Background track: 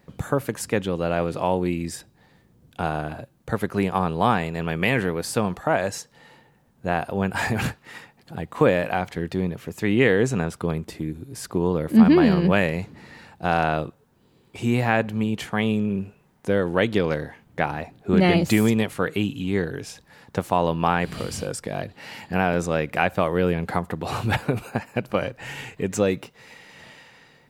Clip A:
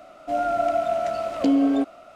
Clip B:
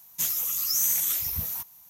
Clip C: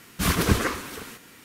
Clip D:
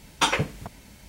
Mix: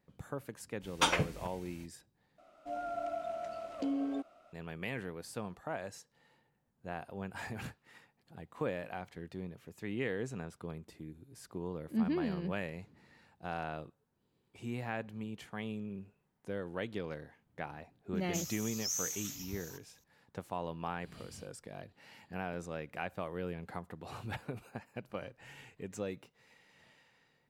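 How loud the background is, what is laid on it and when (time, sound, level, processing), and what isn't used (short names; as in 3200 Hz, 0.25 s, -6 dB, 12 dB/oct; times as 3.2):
background track -18 dB
0.8 add D -6.5 dB, fades 0.05 s
2.38 replace with A -15.5 dB
18.15 add B -13 dB + resonant high shelf 8000 Hz -8.5 dB, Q 3
not used: C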